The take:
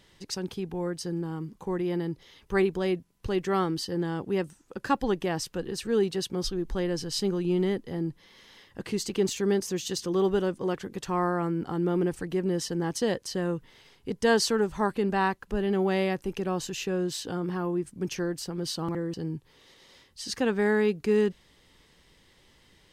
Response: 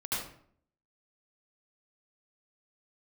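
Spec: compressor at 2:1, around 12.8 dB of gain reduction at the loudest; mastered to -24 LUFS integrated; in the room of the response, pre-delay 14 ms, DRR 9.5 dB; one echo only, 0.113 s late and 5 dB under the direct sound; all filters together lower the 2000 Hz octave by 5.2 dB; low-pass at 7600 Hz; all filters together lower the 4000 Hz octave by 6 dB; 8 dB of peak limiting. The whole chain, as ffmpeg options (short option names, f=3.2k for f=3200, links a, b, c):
-filter_complex "[0:a]lowpass=7.6k,equalizer=f=2k:t=o:g=-5.5,equalizer=f=4k:t=o:g=-6,acompressor=threshold=-44dB:ratio=2,alimiter=level_in=9dB:limit=-24dB:level=0:latency=1,volume=-9dB,aecho=1:1:113:0.562,asplit=2[a][b];[1:a]atrim=start_sample=2205,adelay=14[c];[b][c]afir=irnorm=-1:irlink=0,volume=-15dB[d];[a][d]amix=inputs=2:normalize=0,volume=17dB"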